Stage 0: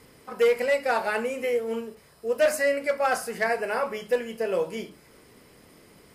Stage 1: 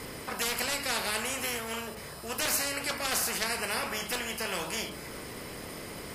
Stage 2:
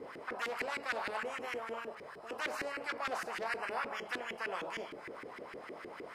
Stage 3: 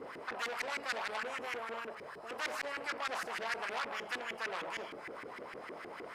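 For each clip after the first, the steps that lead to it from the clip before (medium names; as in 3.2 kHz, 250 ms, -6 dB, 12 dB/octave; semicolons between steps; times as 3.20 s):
spectrum-flattening compressor 4:1
LFO band-pass saw up 6.5 Hz 320–2000 Hz; trim +2.5 dB
transformer saturation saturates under 3.8 kHz; trim +2 dB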